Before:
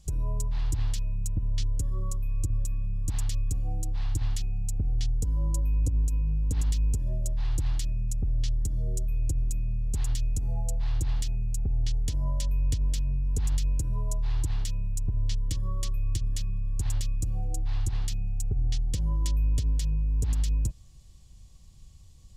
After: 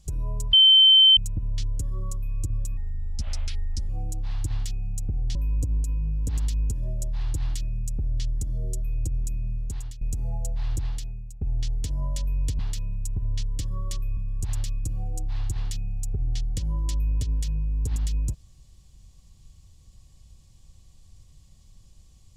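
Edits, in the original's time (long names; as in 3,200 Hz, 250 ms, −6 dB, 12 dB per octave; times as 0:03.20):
0:00.53–0:01.17: beep over 3,090 Hz −11 dBFS
0:02.77–0:03.60: play speed 74%
0:05.06–0:05.59: remove
0:09.79–0:10.25: fade out, to −16.5 dB
0:11.00–0:11.65: fade out, to −17.5 dB
0:12.83–0:14.51: remove
0:16.09–0:16.54: remove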